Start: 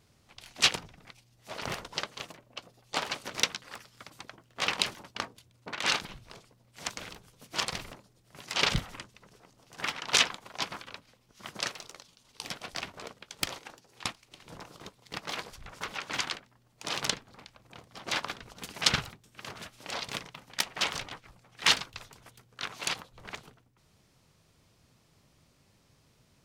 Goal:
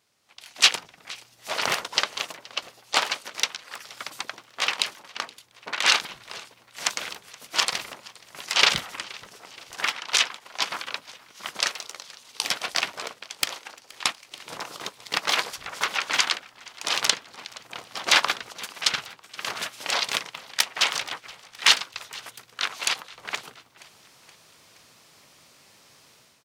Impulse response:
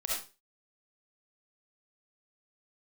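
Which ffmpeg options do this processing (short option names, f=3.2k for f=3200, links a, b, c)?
-filter_complex "[0:a]highpass=f=870:p=1,dynaudnorm=f=150:g=5:m=16dB,asplit=5[a][b][c][d][e];[b]adelay=473,afreqshift=-36,volume=-22.5dB[f];[c]adelay=946,afreqshift=-72,volume=-27.4dB[g];[d]adelay=1419,afreqshift=-108,volume=-32.3dB[h];[e]adelay=1892,afreqshift=-144,volume=-37.1dB[i];[a][f][g][h][i]amix=inputs=5:normalize=0,volume=-1dB"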